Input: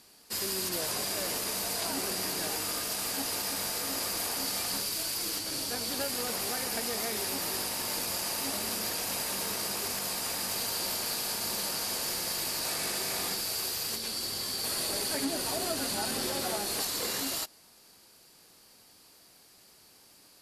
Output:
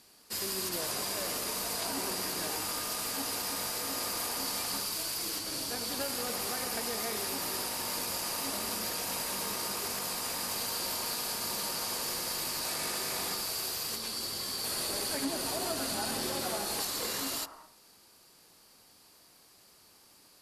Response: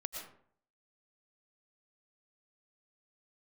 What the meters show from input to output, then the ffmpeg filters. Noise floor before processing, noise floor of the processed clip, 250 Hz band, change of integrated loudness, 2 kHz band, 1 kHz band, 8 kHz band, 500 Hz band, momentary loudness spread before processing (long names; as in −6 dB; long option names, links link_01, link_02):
−58 dBFS, −60 dBFS, −1.5 dB, −2.0 dB, −1.5 dB, 0.0 dB, −2.0 dB, −1.5 dB, 1 LU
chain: -filter_complex "[0:a]asplit=2[link_01][link_02];[link_02]lowpass=frequency=1200:width_type=q:width=3.6[link_03];[1:a]atrim=start_sample=2205,asetrate=66150,aresample=44100,adelay=94[link_04];[link_03][link_04]afir=irnorm=-1:irlink=0,volume=-6.5dB[link_05];[link_01][link_05]amix=inputs=2:normalize=0,volume=-2dB"